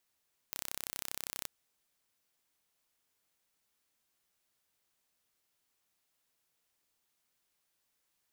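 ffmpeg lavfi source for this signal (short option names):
-f lavfi -i "aevalsrc='0.282*eq(mod(n,1357),0)':d=0.93:s=44100"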